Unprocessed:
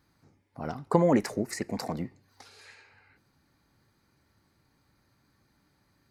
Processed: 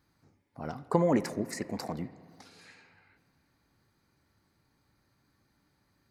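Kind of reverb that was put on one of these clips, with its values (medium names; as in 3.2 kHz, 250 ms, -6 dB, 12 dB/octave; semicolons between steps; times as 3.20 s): spring tank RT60 2.4 s, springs 53/60 ms, chirp 30 ms, DRR 15.5 dB; trim -3 dB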